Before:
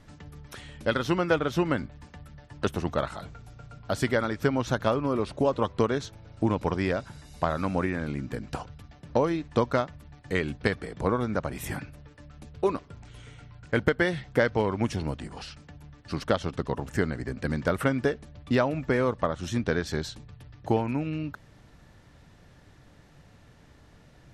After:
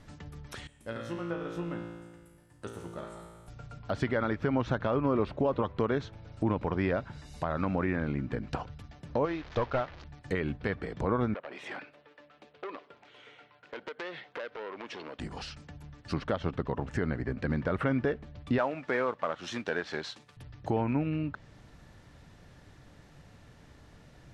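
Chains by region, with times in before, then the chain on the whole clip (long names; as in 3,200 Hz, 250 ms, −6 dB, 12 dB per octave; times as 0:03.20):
0:00.67–0:03.48: high shelf with overshoot 6,700 Hz +11 dB, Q 1.5 + tuned comb filter 57 Hz, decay 1.5 s, mix 90%
0:09.25–0:10.04: linear delta modulator 32 kbit/s, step −38 dBFS + parametric band 200 Hz −11 dB 1.7 octaves
0:11.34–0:15.19: Chebyshev band-pass filter 450–3,300 Hz + downward compressor 4 to 1, threshold −33 dBFS + saturating transformer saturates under 2,400 Hz
0:18.58–0:20.37: variable-slope delta modulation 64 kbit/s + meter weighting curve A
whole clip: brickwall limiter −18 dBFS; treble cut that deepens with the level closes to 2,700 Hz, closed at −29.5 dBFS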